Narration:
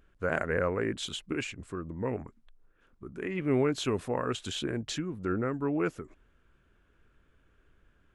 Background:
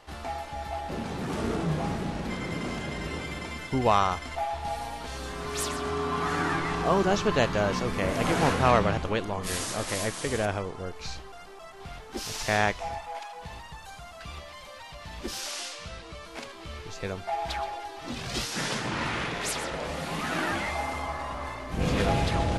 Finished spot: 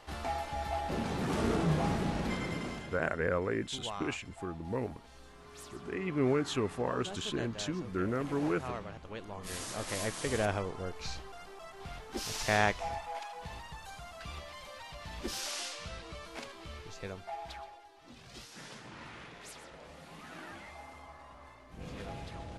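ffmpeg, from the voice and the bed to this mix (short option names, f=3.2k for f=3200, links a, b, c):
-filter_complex "[0:a]adelay=2700,volume=-2.5dB[a];[1:a]volume=15dB,afade=t=out:st=2.26:d=0.8:silence=0.125893,afade=t=in:st=9:d=1.43:silence=0.158489,afade=t=out:st=16.14:d=1.68:silence=0.177828[b];[a][b]amix=inputs=2:normalize=0"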